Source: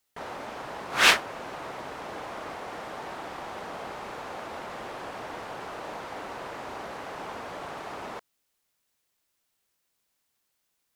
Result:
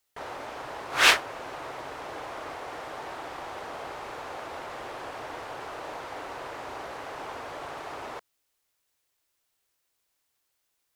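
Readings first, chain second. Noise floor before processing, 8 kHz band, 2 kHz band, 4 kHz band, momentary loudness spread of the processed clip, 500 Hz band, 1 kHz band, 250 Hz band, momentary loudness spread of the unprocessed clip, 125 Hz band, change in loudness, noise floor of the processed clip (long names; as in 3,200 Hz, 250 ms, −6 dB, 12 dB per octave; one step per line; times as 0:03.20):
−77 dBFS, 0.0 dB, 0.0 dB, 0.0 dB, 12 LU, −0.5 dB, 0.0 dB, −2.5 dB, 12 LU, −2.5 dB, 0.0 dB, −77 dBFS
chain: parametric band 200 Hz −13 dB 0.4 octaves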